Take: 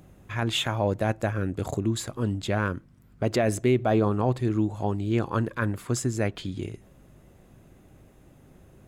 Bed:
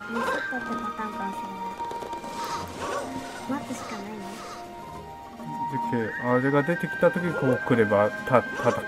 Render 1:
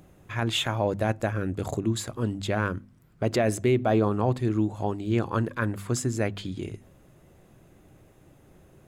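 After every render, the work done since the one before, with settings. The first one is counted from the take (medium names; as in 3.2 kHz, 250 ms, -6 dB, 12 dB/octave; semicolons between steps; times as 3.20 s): de-hum 50 Hz, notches 5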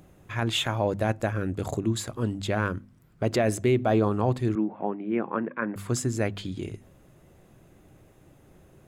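4.55–5.76 s: elliptic band-pass 180–2300 Hz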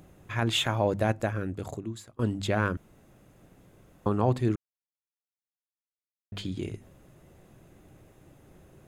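1.04–2.19 s: fade out, to -24 dB; 2.77–4.06 s: room tone; 4.56–6.32 s: mute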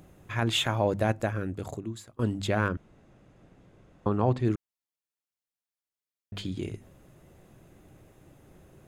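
2.68–4.46 s: distance through air 87 m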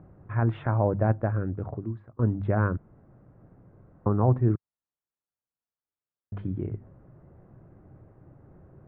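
low-pass 1.5 kHz 24 dB/octave; peaking EQ 110 Hz +6 dB 1.2 oct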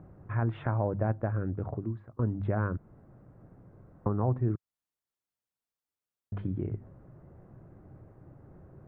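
compression 2:1, threshold -29 dBFS, peak gain reduction 7 dB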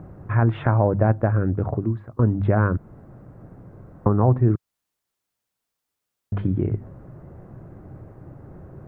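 trim +10.5 dB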